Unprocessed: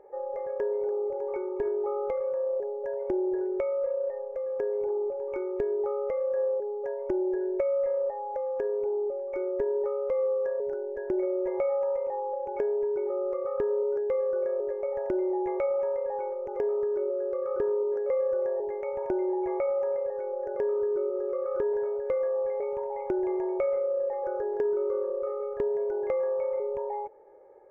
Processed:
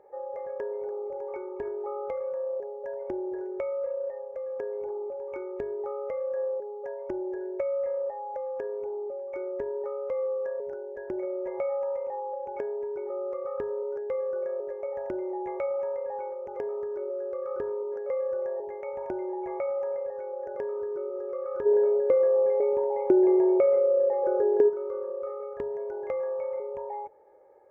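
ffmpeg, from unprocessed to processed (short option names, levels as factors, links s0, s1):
-filter_complex "[0:a]asplit=3[s0][s1][s2];[s0]afade=t=out:st=21.65:d=0.02[s3];[s1]equalizer=f=350:w=0.92:g=14,afade=t=in:st=21.65:d=0.02,afade=t=out:st=24.68:d=0.02[s4];[s2]afade=t=in:st=24.68:d=0.02[s5];[s3][s4][s5]amix=inputs=3:normalize=0,highpass=46,equalizer=f=390:w=2.2:g=-4.5,bandreject=f=50:t=h:w=6,bandreject=f=100:t=h:w=6,bandreject=f=150:t=h:w=6,volume=0.891"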